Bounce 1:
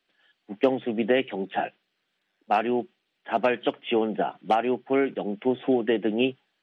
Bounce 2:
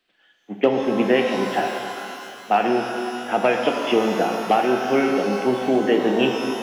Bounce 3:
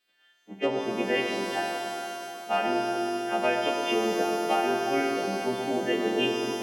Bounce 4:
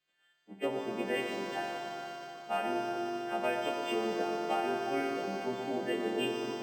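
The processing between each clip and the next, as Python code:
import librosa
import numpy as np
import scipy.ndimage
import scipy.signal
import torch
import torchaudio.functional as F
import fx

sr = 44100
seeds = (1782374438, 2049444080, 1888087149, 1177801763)

y1 = fx.rev_shimmer(x, sr, seeds[0], rt60_s=2.6, semitones=12, shimmer_db=-8, drr_db=2.5)
y1 = F.gain(torch.from_numpy(y1), 3.5).numpy()
y2 = fx.freq_snap(y1, sr, grid_st=2)
y2 = fx.echo_bbd(y2, sr, ms=120, stages=1024, feedback_pct=80, wet_db=-8)
y2 = F.gain(torch.from_numpy(y2), -8.5).numpy()
y3 = np.interp(np.arange(len(y2)), np.arange(len(y2))[::4], y2[::4])
y3 = F.gain(torch.from_numpy(y3), -6.5).numpy()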